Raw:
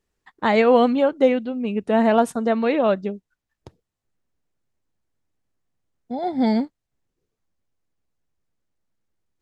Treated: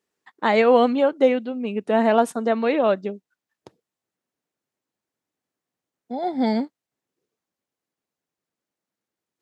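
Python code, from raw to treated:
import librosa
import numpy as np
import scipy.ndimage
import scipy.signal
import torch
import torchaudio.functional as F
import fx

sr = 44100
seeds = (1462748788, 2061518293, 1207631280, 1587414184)

y = scipy.signal.sosfilt(scipy.signal.butter(2, 220.0, 'highpass', fs=sr, output='sos'), x)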